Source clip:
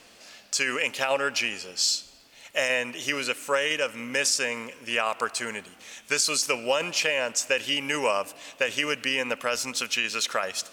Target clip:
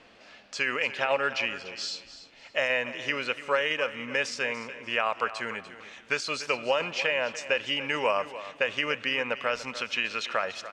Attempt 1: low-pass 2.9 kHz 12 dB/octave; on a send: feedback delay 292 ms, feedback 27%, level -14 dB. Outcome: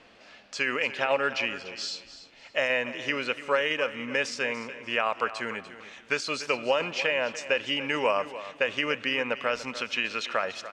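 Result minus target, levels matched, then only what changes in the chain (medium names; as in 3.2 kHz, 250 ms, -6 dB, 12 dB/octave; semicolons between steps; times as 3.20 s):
250 Hz band +3.0 dB
add after low-pass: dynamic bell 290 Hz, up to -4 dB, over -45 dBFS, Q 1.2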